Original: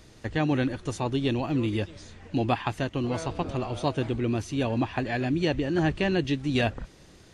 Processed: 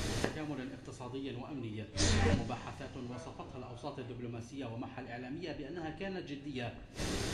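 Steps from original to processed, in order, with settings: flipped gate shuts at -32 dBFS, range -32 dB; hum 50 Hz, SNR 18 dB; two-slope reverb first 0.4 s, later 3.9 s, from -21 dB, DRR 3 dB; gain +15 dB

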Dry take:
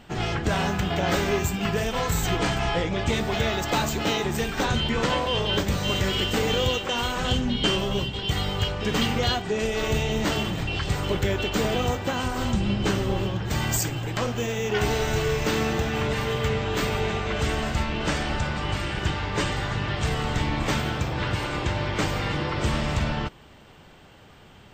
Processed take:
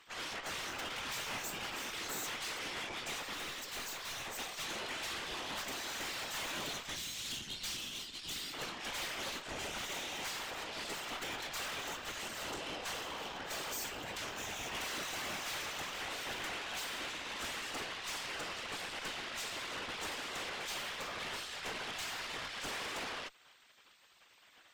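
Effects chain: spectral gate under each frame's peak -15 dB weak; 6.96–8.53 EQ curve 270 Hz 0 dB, 430 Hz -29 dB, 3700 Hz +3 dB; whisperiser; tube stage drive 36 dB, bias 0.7; 3.34–4.39 hard clip -39 dBFS, distortion -24 dB; gain -1 dB

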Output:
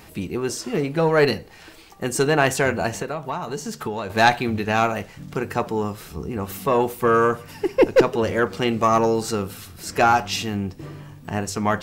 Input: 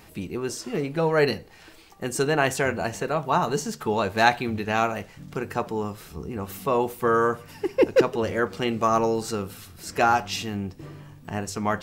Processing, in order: one diode to ground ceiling -9 dBFS; 3.01–4.1 compressor 10:1, threshold -29 dBFS, peak gain reduction 12 dB; gain +4.5 dB

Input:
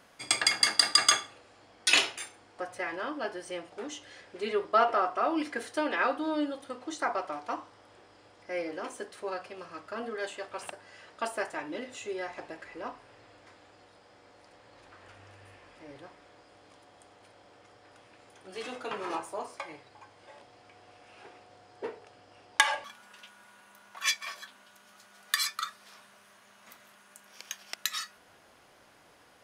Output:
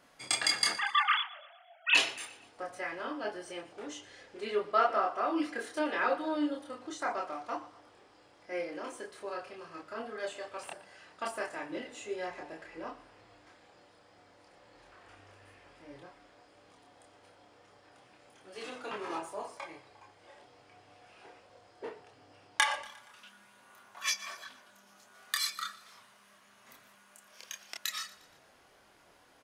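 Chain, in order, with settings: 0.78–1.95 sine-wave speech; chorus voices 6, 0.34 Hz, delay 27 ms, depth 3.9 ms; feedback echo 0.118 s, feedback 50%, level -19 dB

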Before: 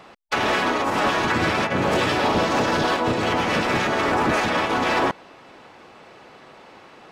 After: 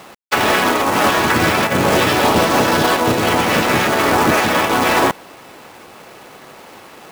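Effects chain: HPF 50 Hz; companded quantiser 4-bit; gain +6 dB

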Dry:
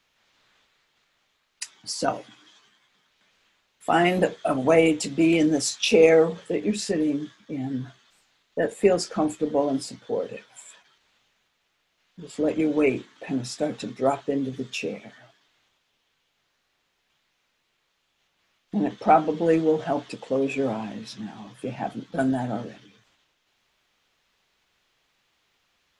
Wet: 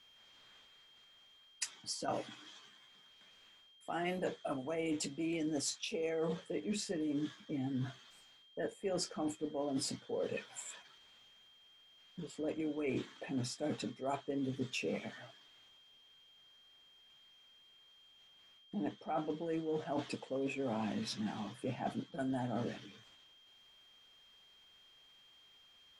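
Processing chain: reverse; compressor 20:1, threshold -33 dBFS, peak gain reduction 22.5 dB; reverse; whine 3200 Hz -61 dBFS; gain -1 dB

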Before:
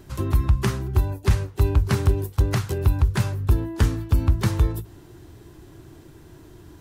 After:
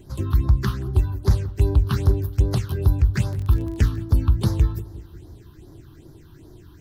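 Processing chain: phaser stages 6, 2.5 Hz, lowest notch 540–2700 Hz; darkening echo 0.175 s, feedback 56%, low-pass 1100 Hz, level -16 dB; 3.3–3.96 crackle 37/s -28 dBFS

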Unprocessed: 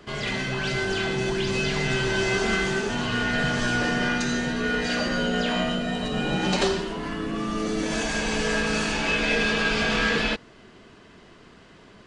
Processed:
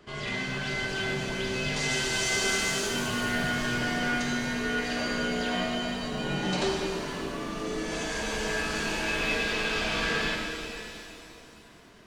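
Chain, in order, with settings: 1.76–2.87 tone controls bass -4 dB, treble +13 dB; shimmer reverb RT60 2.7 s, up +7 st, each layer -8 dB, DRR 1 dB; gain -7 dB

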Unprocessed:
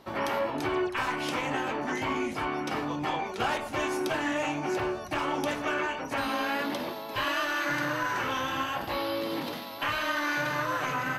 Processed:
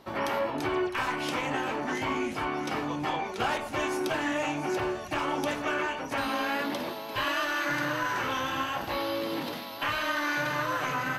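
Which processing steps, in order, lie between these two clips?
thin delay 0.684 s, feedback 48%, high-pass 2500 Hz, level -12 dB

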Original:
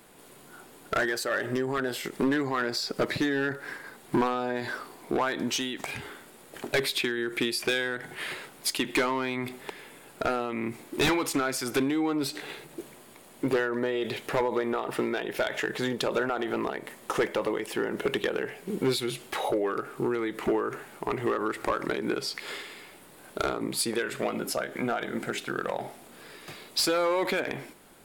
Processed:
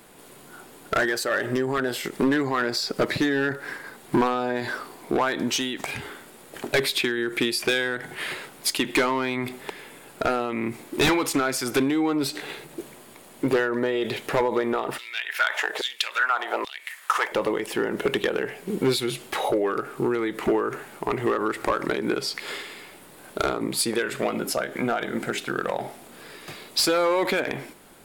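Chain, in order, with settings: 14.98–17.32 LFO high-pass saw down 1.2 Hz 540–3800 Hz; gain +4 dB

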